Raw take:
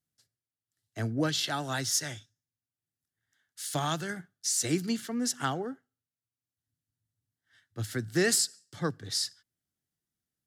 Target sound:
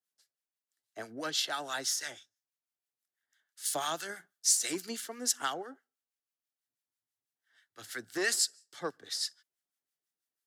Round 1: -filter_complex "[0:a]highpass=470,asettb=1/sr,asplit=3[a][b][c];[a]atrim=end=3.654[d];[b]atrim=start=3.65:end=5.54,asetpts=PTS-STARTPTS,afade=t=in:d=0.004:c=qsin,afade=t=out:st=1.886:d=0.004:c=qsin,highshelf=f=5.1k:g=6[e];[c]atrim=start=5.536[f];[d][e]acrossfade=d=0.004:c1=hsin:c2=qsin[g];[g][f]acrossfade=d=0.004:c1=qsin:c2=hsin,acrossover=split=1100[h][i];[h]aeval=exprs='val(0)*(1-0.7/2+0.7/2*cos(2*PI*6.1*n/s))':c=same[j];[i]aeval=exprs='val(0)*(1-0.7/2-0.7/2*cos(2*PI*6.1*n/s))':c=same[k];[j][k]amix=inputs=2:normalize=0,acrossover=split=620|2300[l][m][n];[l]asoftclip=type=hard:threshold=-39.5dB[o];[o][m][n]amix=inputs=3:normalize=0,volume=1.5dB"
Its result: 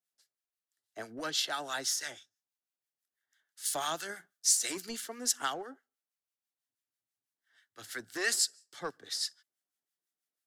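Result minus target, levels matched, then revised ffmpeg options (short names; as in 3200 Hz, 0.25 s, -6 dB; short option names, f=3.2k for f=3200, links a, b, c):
hard clip: distortion +9 dB
-filter_complex "[0:a]highpass=470,asettb=1/sr,asplit=3[a][b][c];[a]atrim=end=3.654[d];[b]atrim=start=3.65:end=5.54,asetpts=PTS-STARTPTS,afade=t=in:d=0.004:c=qsin,afade=t=out:st=1.886:d=0.004:c=qsin,highshelf=f=5.1k:g=6[e];[c]atrim=start=5.536[f];[d][e]acrossfade=d=0.004:c1=hsin:c2=qsin[g];[g][f]acrossfade=d=0.004:c1=qsin:c2=hsin,acrossover=split=1100[h][i];[h]aeval=exprs='val(0)*(1-0.7/2+0.7/2*cos(2*PI*6.1*n/s))':c=same[j];[i]aeval=exprs='val(0)*(1-0.7/2-0.7/2*cos(2*PI*6.1*n/s))':c=same[k];[j][k]amix=inputs=2:normalize=0,acrossover=split=620|2300[l][m][n];[l]asoftclip=type=hard:threshold=-32dB[o];[o][m][n]amix=inputs=3:normalize=0,volume=1.5dB"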